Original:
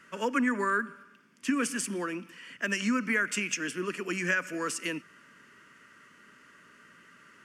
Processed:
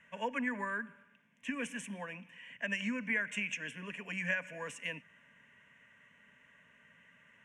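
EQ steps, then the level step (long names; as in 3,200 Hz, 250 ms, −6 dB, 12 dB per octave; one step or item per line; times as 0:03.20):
high-frequency loss of the air 79 metres
phaser with its sweep stopped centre 1,300 Hz, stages 6
−2.0 dB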